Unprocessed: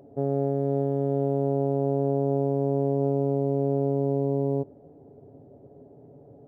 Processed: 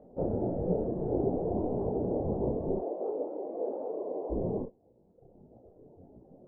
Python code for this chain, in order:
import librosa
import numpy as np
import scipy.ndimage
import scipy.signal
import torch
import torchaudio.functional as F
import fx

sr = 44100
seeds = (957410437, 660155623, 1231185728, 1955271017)

p1 = fx.whisperise(x, sr, seeds[0])
p2 = scipy.signal.sosfilt(scipy.signal.butter(2, 1200.0, 'lowpass', fs=sr, output='sos'), p1)
p3 = fx.dereverb_blind(p2, sr, rt60_s=1.6)
p4 = fx.highpass(p3, sr, hz=380.0, slope=24, at=(2.76, 4.3))
p5 = p4 + fx.room_early_taps(p4, sr, ms=(33, 49), db=(-5.5, -12.5), dry=0)
y = fx.detune_double(p5, sr, cents=56)